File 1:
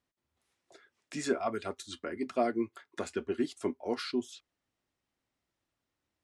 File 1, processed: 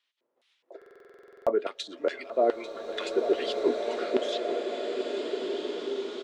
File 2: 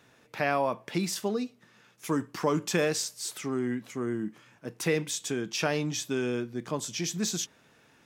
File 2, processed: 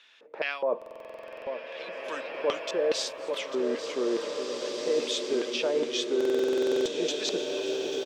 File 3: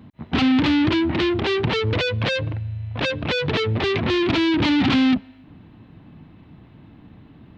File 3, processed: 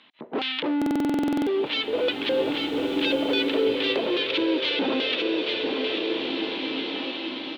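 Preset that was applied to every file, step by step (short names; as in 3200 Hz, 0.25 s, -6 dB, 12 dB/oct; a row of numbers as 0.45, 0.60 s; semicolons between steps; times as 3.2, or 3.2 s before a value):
LFO band-pass square 2.4 Hz 500–3300 Hz; HPF 300 Hz 12 dB/oct; notch 740 Hz, Q 14; echo 0.843 s -14.5 dB; reverse; compressor 6:1, threshold -38 dBFS; reverse; high shelf 5600 Hz -8 dB; stuck buffer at 0.77/6.16, samples 2048, times 14; bloom reverb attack 2.12 s, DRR 2 dB; normalise peaks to -12 dBFS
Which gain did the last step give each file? +18.0, +13.5, +14.5 dB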